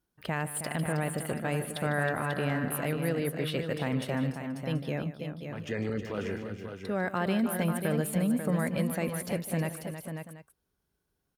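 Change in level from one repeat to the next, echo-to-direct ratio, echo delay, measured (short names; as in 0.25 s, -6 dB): no steady repeat, -4.5 dB, 0.15 s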